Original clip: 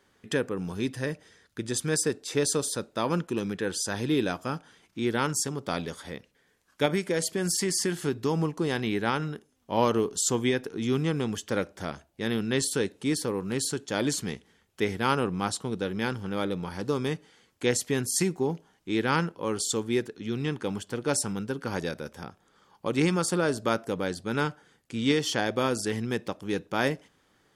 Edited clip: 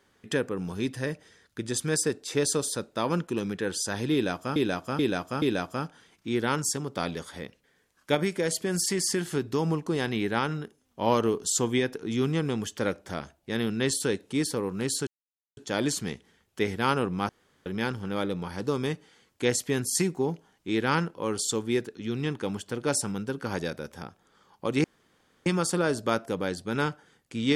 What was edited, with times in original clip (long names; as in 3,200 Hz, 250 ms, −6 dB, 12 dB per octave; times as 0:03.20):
0:04.13–0:04.56: repeat, 4 plays
0:13.78: splice in silence 0.50 s
0:15.50–0:15.87: fill with room tone
0:23.05: splice in room tone 0.62 s